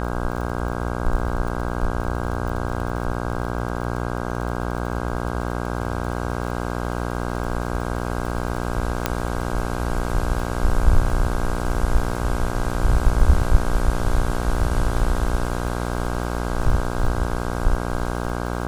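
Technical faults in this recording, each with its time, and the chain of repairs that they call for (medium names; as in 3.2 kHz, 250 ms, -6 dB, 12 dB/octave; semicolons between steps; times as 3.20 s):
buzz 60 Hz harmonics 27 -26 dBFS
crackle 42 per s -29 dBFS
9.06 s: pop -4 dBFS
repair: de-click; de-hum 60 Hz, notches 27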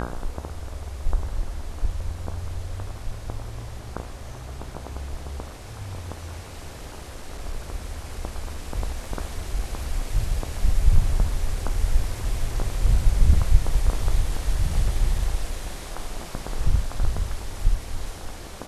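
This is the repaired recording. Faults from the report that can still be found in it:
9.06 s: pop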